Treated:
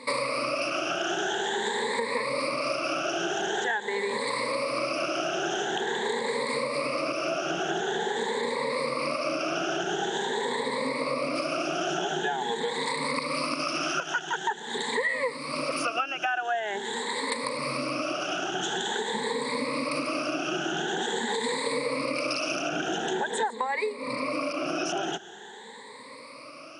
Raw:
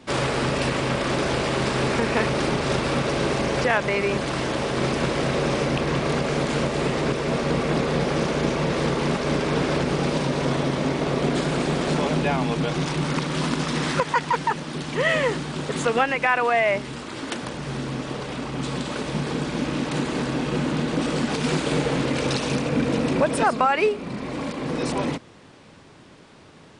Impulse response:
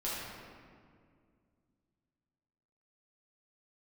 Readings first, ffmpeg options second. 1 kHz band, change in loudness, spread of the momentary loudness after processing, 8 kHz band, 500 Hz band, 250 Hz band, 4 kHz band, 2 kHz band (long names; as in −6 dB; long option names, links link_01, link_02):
−3.5 dB, −5.0 dB, 2 LU, −1.5 dB, −5.0 dB, −10.0 dB, −1.5 dB, −3.0 dB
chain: -af "afftfilt=real='re*pow(10,23/40*sin(2*PI*(0.97*log(max(b,1)*sr/1024/100)/log(2)-(0.46)*(pts-256)/sr)))':imag='im*pow(10,23/40*sin(2*PI*(0.97*log(max(b,1)*sr/1024/100)/log(2)-(0.46)*(pts-256)/sr)))':win_size=1024:overlap=0.75,highpass=410,acompressor=threshold=-28dB:ratio=6,volume=1.5dB"